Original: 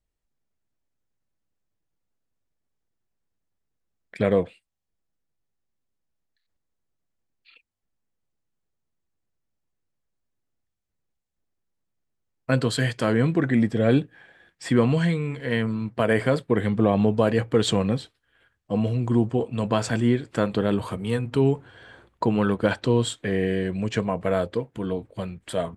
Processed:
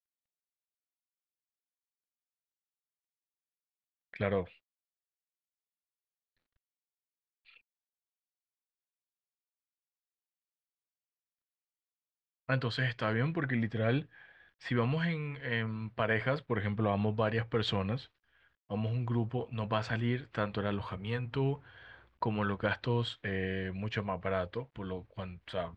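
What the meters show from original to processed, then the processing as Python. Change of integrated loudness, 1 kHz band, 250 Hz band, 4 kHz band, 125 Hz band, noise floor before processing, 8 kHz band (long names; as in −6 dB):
−10.0 dB, −7.0 dB, −13.0 dB, −7.0 dB, −8.0 dB, −79 dBFS, below −20 dB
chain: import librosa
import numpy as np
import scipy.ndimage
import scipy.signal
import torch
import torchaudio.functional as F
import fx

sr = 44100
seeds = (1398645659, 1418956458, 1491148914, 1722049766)

y = fx.peak_eq(x, sr, hz=290.0, db=-13.5, octaves=2.9)
y = fx.quant_dither(y, sr, seeds[0], bits=12, dither='none')
y = fx.air_absorb(y, sr, metres=280.0)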